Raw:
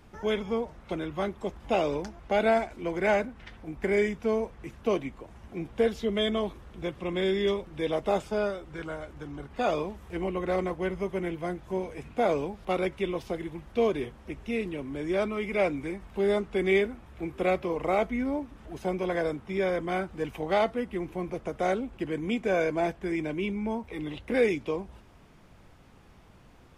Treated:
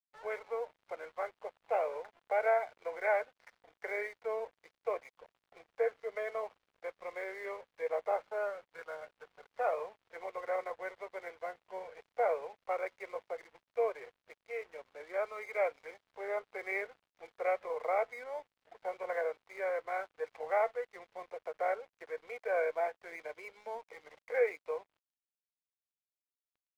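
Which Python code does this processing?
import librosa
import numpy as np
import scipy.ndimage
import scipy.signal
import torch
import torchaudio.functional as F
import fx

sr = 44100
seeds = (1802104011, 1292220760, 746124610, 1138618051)

y = scipy.signal.sosfilt(scipy.signal.cheby1(4, 1.0, [470.0, 2200.0], 'bandpass', fs=sr, output='sos'), x)
y = np.sign(y) * np.maximum(np.abs(y) - 10.0 ** (-53.0 / 20.0), 0.0)
y = y * librosa.db_to_amplitude(-4.0)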